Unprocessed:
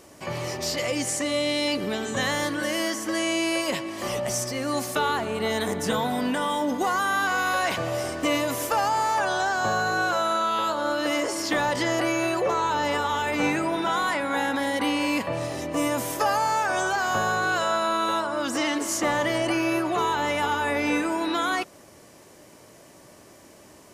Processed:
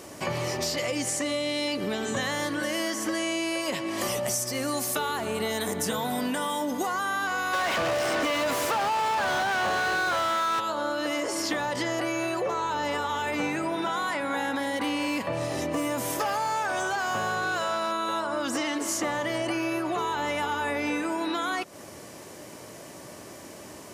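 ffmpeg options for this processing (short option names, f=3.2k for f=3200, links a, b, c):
-filter_complex "[0:a]asettb=1/sr,asplit=3[a][b][c];[a]atrim=end=4.014[d];[b]atrim=start=4.01:end=6.87,asetpts=PTS-STARTPTS,afade=t=in:d=0.004:c=qsin,afade=t=out:st=2.856:d=0.004:c=qsin,highshelf=f=7.3k:g=11.5[e];[c]atrim=start=6.866[f];[d][e]acrossfade=d=0.004:c1=hsin:c2=qsin[g];[g][f]acrossfade=d=0.004:c1=qsin:c2=hsin,asplit=3[h][i][j];[h]afade=t=out:st=7.52:d=0.02[k];[i]asplit=2[l][m];[m]highpass=f=720:p=1,volume=32dB,asoftclip=type=tanh:threshold=-13.5dB[n];[l][n]amix=inputs=2:normalize=0,lowpass=f=3.1k:p=1,volume=-6dB,afade=t=in:st=7.52:d=0.02,afade=t=out:st=10.59:d=0.02[o];[j]afade=t=in:st=10.59:d=0.02[p];[k][o][p]amix=inputs=3:normalize=0,asettb=1/sr,asplit=3[q][r][s];[q]atrim=end=14.764[t];[r]atrim=start=14.76:end=17.92,asetpts=PTS-STARTPTS,afade=t=in:d=0.004:c=qsin,afade=t=out:st=3.156:d=0.004:c=qsin,asoftclip=type=hard:threshold=-20dB[u];[s]atrim=start=17.916[v];[t][u]acrossfade=d=0.004:c1=hsin:c2=qsin[w];[w][v]acrossfade=d=0.004:c1=qsin:c2=hsin,highpass=68,acompressor=threshold=-33dB:ratio=6,volume=6.5dB"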